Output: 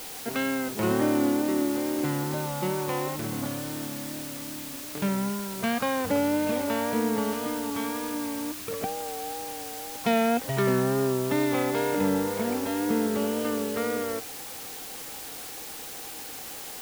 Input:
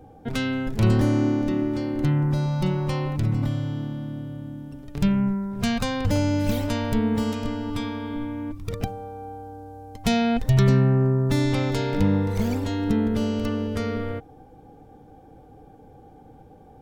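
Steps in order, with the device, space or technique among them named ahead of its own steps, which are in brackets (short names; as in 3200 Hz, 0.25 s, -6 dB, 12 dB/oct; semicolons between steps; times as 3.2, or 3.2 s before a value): wax cylinder (BPF 330–2200 Hz; wow and flutter; white noise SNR 11 dB); gain +2.5 dB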